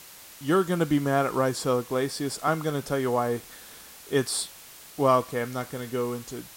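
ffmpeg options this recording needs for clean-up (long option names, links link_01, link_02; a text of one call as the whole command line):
ffmpeg -i in.wav -af "afwtdn=0.005" out.wav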